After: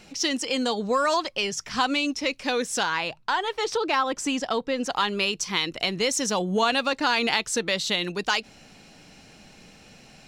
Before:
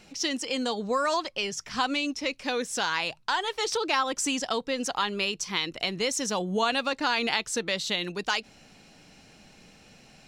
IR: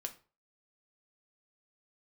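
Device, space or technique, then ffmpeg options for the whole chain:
parallel distortion: -filter_complex "[0:a]asettb=1/sr,asplit=3[a][b][c];[a]atrim=end=2.834[d];[b]atrim=start=2.83:end=4.9,asetpts=PTS-STARTPTS,afade=t=in:d=0.004:c=qsin,afade=t=out:st=2.066:d=0.004:c=qsin,highshelf=f=3.7k:g=-9.5[e];[c]atrim=start=4.896[f];[d][e]acrossfade=d=0.004:c1=hsin:c2=qsin[g];[g][f]acrossfade=d=0.004:c1=qsin:c2=hsin,asplit=2[h][i];[i]asoftclip=type=hard:threshold=-23.5dB,volume=-13.5dB[j];[h][j]amix=inputs=2:normalize=0,volume=2dB"

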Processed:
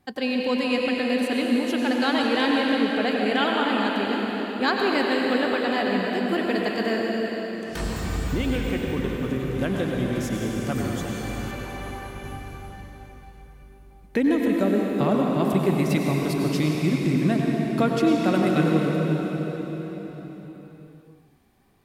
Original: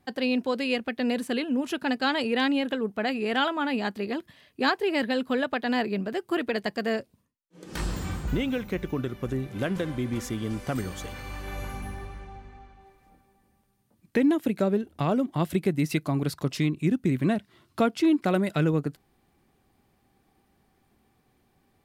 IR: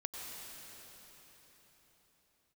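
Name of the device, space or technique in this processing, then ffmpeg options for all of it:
cathedral: -filter_complex "[1:a]atrim=start_sample=2205[a];[0:a][a]afir=irnorm=-1:irlink=0,asettb=1/sr,asplit=3[b][c][d];[b]atrim=end=11.514[e];[c]atrim=start=11.51:end=12.24,asetpts=PTS-STARTPTS,afade=t=in:d=0.004:c=qsin,afade=t=out:st=0.726:d=0.004:c=qsin,bass=f=250:g=-5,treble=f=4k:g=-4[f];[d]atrim=start=12.236[g];[e][f]acrossfade=d=0.004:c1=hsin:c2=qsin[h];[h][g]acrossfade=d=0.004:c1=qsin:c2=hsin,volume=4dB"

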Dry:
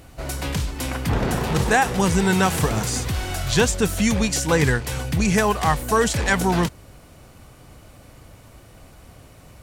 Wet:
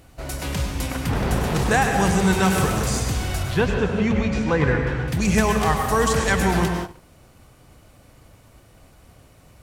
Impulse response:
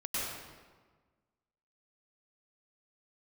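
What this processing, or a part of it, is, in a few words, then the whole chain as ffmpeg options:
keyed gated reverb: -filter_complex "[0:a]asettb=1/sr,asplit=3[a][b][c];[a]atrim=end=3.434[d];[b]atrim=start=3.43:end=5.08,asetpts=PTS-STARTPTS,afade=t=in:d=0.004:c=qsin,afade=t=out:st=1.646:d=0.004:c=qsin,lowpass=2.4k[e];[c]atrim=start=5.076[f];[d][e]acrossfade=d=0.004:c1=hsin:c2=qsin[g];[g][f]acrossfade=d=0.004:c1=qsin:c2=hsin,asplit=3[h][i][j];[1:a]atrim=start_sample=2205[k];[i][k]afir=irnorm=-1:irlink=0[l];[j]apad=whole_len=424558[m];[l][m]sidechaingate=range=-33dB:threshold=-41dB:ratio=16:detection=peak,volume=-5dB[n];[h][n]amix=inputs=2:normalize=0,volume=-4.5dB"

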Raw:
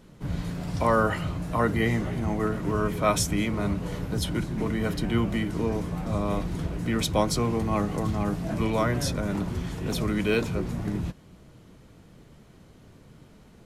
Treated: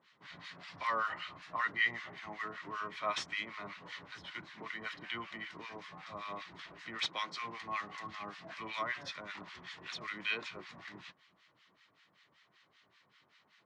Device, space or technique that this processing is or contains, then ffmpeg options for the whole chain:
guitar amplifier with harmonic tremolo: -filter_complex "[0:a]asettb=1/sr,asplit=3[a][b][c];[a]atrim=end=6.984[d];[b]atrim=start=6.98:end=7.45,asetpts=PTS-STARTPTS,afade=t=in:d=0.004:c=qsin,afade=t=out:st=0.466:d=0.004:c=qsin,highpass=f=160:w=0.5412,highpass=f=160:w=1.3066[e];[c]atrim=start=7.446[f];[d][e]acrossfade=d=0.004:c1=hsin:c2=qsin[g];[g][f]acrossfade=d=0.004:c1=qsin:c2=hsin,aderivative,acrossover=split=1100[h][i];[h]aeval=exprs='val(0)*(1-1/2+1/2*cos(2*PI*5.2*n/s))':c=same[j];[i]aeval=exprs='val(0)*(1-1/2-1/2*cos(2*PI*5.2*n/s))':c=same[k];[j][k]amix=inputs=2:normalize=0,asoftclip=type=tanh:threshold=-30dB,highpass=75,equalizer=f=240:t=q:w=4:g=-3,equalizer=f=480:t=q:w=4:g=-5,equalizer=f=1.1k:t=q:w=4:g=7,equalizer=f=1.9k:t=q:w=4:g=7,lowpass=f=4k:w=0.5412,lowpass=f=4k:w=1.3066,volume=9dB"

